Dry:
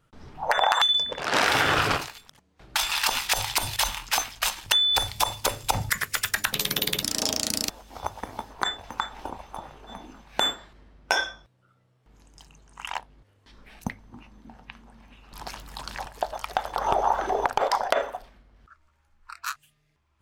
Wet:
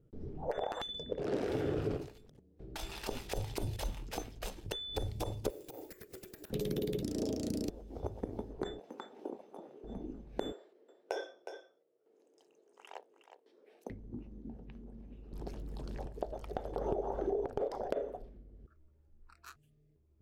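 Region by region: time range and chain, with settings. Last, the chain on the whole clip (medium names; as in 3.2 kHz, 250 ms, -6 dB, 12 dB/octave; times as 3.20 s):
5.50–6.50 s: steep high-pass 290 Hz 96 dB/octave + compression 16:1, threshold -33 dBFS + careless resampling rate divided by 3×, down none, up zero stuff
8.79–9.84 s: high-pass 200 Hz 24 dB/octave + bass shelf 270 Hz -11.5 dB
10.52–13.90 s: high-pass 430 Hz 24 dB/octave + delay 364 ms -10.5 dB
whole clip: FFT filter 250 Hz 0 dB, 410 Hz +5 dB, 990 Hz -23 dB; compression 6:1, threshold -33 dBFS; trim +2 dB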